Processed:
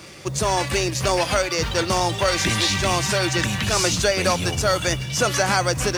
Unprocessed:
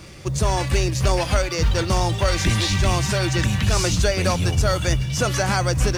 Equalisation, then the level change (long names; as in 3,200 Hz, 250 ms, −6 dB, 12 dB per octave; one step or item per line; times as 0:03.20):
high-pass filter 290 Hz 6 dB per octave
+3.0 dB